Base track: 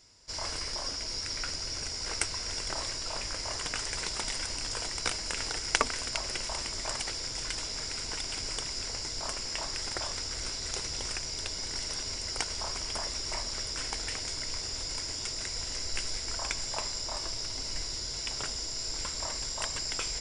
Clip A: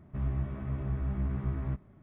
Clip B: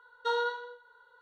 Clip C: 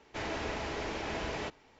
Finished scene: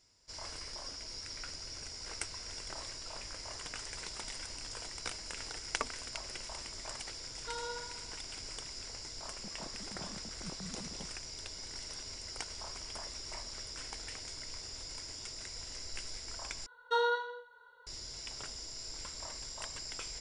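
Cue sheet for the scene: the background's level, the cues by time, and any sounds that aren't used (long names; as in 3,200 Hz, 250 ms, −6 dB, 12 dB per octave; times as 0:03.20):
base track −9 dB
0:07.22: mix in B −13 dB + flutter between parallel walls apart 11.1 metres, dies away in 1 s
0:09.29: mix in A −17.5 dB + three sine waves on the formant tracks
0:16.66: overwrite with B
not used: C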